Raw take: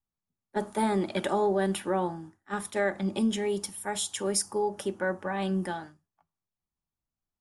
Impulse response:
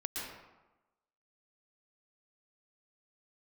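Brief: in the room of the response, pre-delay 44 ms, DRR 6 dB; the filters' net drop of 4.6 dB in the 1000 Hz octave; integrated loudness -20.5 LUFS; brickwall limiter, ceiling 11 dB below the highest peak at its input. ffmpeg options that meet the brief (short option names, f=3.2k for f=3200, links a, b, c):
-filter_complex "[0:a]equalizer=f=1k:t=o:g=-6,alimiter=level_in=2dB:limit=-24dB:level=0:latency=1,volume=-2dB,asplit=2[a][b];[1:a]atrim=start_sample=2205,adelay=44[c];[b][c]afir=irnorm=-1:irlink=0,volume=-8dB[d];[a][d]amix=inputs=2:normalize=0,volume=14.5dB"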